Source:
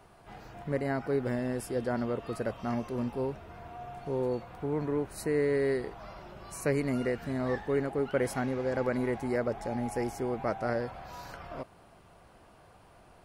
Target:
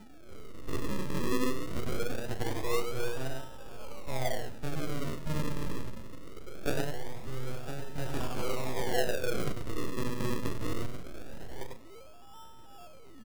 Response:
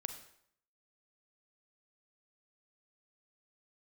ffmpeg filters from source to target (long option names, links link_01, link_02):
-filter_complex "[0:a]asettb=1/sr,asplit=3[link_01][link_02][link_03];[link_01]atrim=end=6.804[link_04];[link_02]atrim=start=6.8:end=7.98,asetpts=PTS-STARTPTS,afade=type=in:duration=0.004:curve=qsin,afade=type=out:start_time=1.176:duration=0.004:curve=qsin,acompressor=threshold=-37dB:ratio=6[link_05];[link_03]atrim=start=7.976[link_06];[link_04][link_05]acrossfade=duration=0.004:curve1=hsin:curve2=qsin[link_07];[link_07][link_06]acrossfade=duration=0.004:curve1=qsin:curve2=hsin,highpass=frequency=120:width=0.5412,highpass=frequency=120:width=1.3066,equalizer=frequency=130:width_type=q:width=4:gain=8,equalizer=frequency=240:width_type=q:width=4:gain=9,equalizer=frequency=390:width_type=q:width=4:gain=-9,equalizer=frequency=600:width_type=q:width=4:gain=-5,equalizer=frequency=1200:width_type=q:width=4:gain=7,equalizer=frequency=3900:width_type=q:width=4:gain=6,lowpass=frequency=6200:width=0.5412,lowpass=frequency=6200:width=1.3066,aeval=exprs='abs(val(0))':channel_layout=same,equalizer=frequency=1100:width_type=o:width=0.65:gain=-14.5,aeval=exprs='val(0)+0.002*sin(2*PI*1300*n/s)':channel_layout=same,aecho=1:1:100:0.596,asplit=2[link_08][link_09];[1:a]atrim=start_sample=2205,adelay=38[link_10];[link_09][link_10]afir=irnorm=-1:irlink=0,volume=-6.5dB[link_11];[link_08][link_11]amix=inputs=2:normalize=0,aphaser=in_gain=1:out_gain=1:delay=2.3:decay=0.45:speed=0.39:type=triangular,acrossover=split=250[link_12][link_13];[link_12]acompressor=threshold=-27dB:ratio=6[link_14];[link_14][link_13]amix=inputs=2:normalize=0,acrusher=samples=40:mix=1:aa=0.000001:lfo=1:lforange=40:lforate=0.22"